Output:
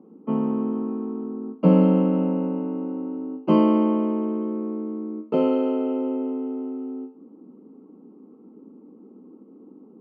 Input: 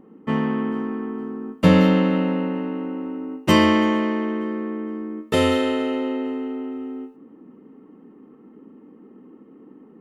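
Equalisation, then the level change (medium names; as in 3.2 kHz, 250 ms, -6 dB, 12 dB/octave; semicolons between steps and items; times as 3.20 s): boxcar filter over 24 samples; steep high-pass 170 Hz; distance through air 120 m; 0.0 dB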